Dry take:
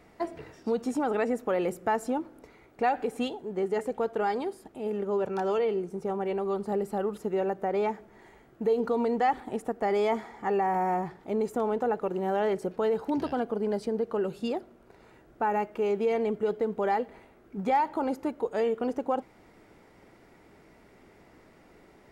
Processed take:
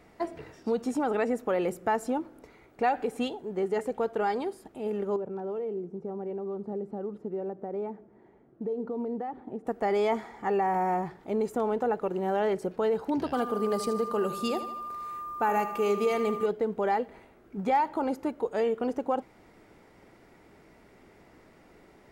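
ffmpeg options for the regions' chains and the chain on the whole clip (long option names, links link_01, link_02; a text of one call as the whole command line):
ffmpeg -i in.wav -filter_complex "[0:a]asettb=1/sr,asplit=3[link_01][link_02][link_03];[link_01]atrim=end=5.164[link_04];[link_02]atrim=start=5.16:end=9.67,asetpts=PTS-STARTPTS,afade=type=in:duration=0.004:curve=qsin,afade=type=out:start_time=4.506:duration=0.004:curve=qsin,acompressor=threshold=-34dB:ratio=1.5:attack=3.2:release=140:knee=1:detection=peak,acrusher=bits=7:mode=log:mix=0:aa=0.000001,bandpass=frequency=250:width_type=q:width=0.68[link_05];[link_03]atrim=start=9.666[link_06];[link_04][link_05]acrossfade=duration=0.004:curve1=hsin:curve2=qsin[link_07];[link_07][link_06]acrossfade=duration=0.004:curve1=qsin:curve2=hsin,asettb=1/sr,asplit=3[link_08][link_09][link_10];[link_08]atrim=end=13.334[link_11];[link_09]atrim=start=13.33:end=16.46,asetpts=PTS-STARTPTS,afade=type=in:duration=0.004:curve=qsin,afade=type=out:start_time=3.126:duration=0.004:curve=qsin,aemphasis=mode=production:type=75kf,aecho=1:1:78|156|234|312|390|468:0.251|0.136|0.0732|0.0396|0.0214|0.0115,atrim=end_sample=138033,aeval=exprs='val(0)+0.0178*sin(2*PI*1200*n/s)':channel_layout=same[link_12];[link_10]atrim=start=16.456[link_13];[link_11][link_12]acrossfade=duration=0.004:curve1=hsin:curve2=qsin[link_14];[link_14][link_13]acrossfade=duration=0.004:curve1=qsin:curve2=hsin" out.wav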